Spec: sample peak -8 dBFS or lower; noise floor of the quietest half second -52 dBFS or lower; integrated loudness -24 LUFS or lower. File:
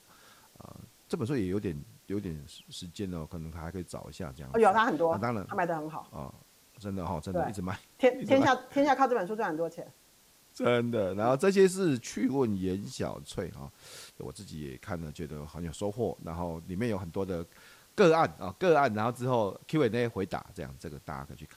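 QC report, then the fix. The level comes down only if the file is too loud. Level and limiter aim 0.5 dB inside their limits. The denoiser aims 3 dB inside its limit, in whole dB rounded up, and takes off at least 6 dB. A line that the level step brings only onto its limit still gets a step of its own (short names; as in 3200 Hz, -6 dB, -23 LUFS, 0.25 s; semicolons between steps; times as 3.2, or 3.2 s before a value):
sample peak -10.5 dBFS: OK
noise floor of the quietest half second -62 dBFS: OK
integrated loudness -30.0 LUFS: OK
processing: none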